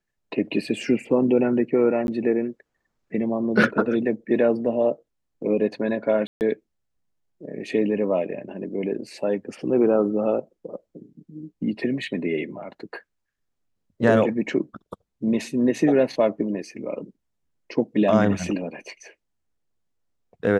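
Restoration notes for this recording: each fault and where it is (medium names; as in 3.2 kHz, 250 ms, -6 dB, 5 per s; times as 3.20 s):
2.07–2.08 s: dropout 11 ms
6.27–6.41 s: dropout 139 ms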